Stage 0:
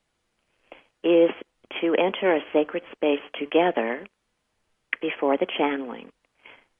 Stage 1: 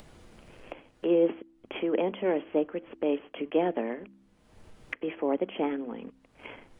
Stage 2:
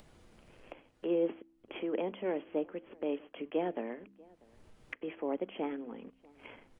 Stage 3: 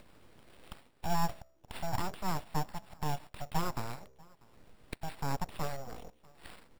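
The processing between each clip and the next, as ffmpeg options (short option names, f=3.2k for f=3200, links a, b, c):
-af "tiltshelf=f=650:g=6.5,bandreject=f=65.79:t=h:w=4,bandreject=f=131.58:t=h:w=4,bandreject=f=197.37:t=h:w=4,bandreject=f=263.16:t=h:w=4,bandreject=f=328.95:t=h:w=4,acompressor=mode=upward:threshold=-22dB:ratio=2.5,volume=-7.5dB"
-filter_complex "[0:a]asplit=2[a][b];[b]adelay=641.4,volume=-25dB,highshelf=f=4k:g=-14.4[c];[a][c]amix=inputs=2:normalize=0,volume=-7dB"
-af "acrusher=samples=7:mix=1:aa=0.000001,aeval=exprs='abs(val(0))':c=same,volume=2.5dB"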